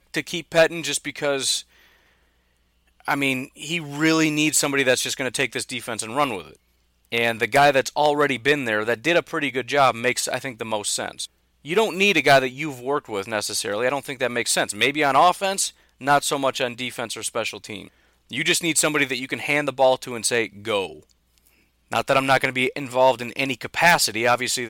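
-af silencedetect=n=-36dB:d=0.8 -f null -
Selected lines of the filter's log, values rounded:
silence_start: 1.61
silence_end: 3.00 | silence_duration: 1.39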